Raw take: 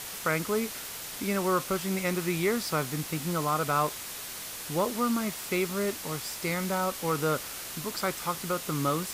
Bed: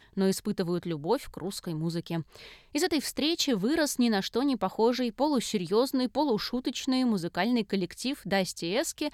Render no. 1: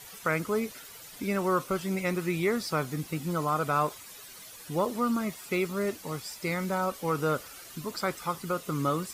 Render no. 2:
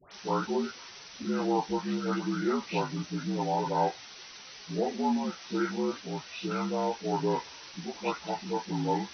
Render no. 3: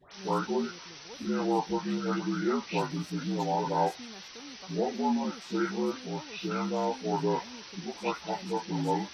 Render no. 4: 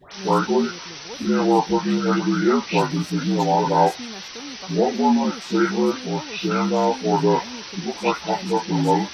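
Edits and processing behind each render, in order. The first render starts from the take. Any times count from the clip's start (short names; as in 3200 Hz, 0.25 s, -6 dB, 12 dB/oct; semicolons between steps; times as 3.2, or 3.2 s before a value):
denoiser 12 dB, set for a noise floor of -40 dBFS
inharmonic rescaling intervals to 78%; dispersion highs, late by 0.12 s, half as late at 1400 Hz
add bed -21.5 dB
gain +10.5 dB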